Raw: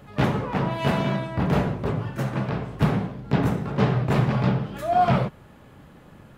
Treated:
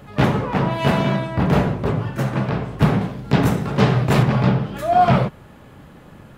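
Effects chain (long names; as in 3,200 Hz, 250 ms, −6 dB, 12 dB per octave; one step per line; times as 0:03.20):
0:03.01–0:04.23: high-shelf EQ 3,300 Hz +8 dB
level +5 dB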